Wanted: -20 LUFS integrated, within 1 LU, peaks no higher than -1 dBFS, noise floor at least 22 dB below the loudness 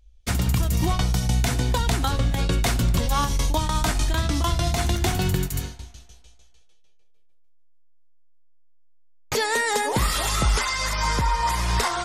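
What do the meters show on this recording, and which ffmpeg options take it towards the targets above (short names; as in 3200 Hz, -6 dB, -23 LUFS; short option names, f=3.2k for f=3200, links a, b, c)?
loudness -23.5 LUFS; peak -11.0 dBFS; loudness target -20.0 LUFS
-> -af "volume=3.5dB"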